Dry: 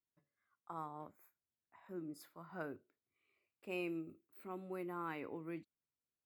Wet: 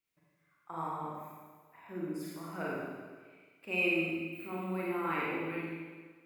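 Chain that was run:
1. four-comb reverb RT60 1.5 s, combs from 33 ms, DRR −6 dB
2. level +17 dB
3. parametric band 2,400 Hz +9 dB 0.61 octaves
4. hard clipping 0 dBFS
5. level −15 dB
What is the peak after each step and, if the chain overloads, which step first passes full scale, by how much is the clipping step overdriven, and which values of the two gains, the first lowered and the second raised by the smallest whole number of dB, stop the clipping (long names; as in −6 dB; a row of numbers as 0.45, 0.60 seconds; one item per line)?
−23.0, −6.0, −4.0, −4.0, −19.0 dBFS
no step passes full scale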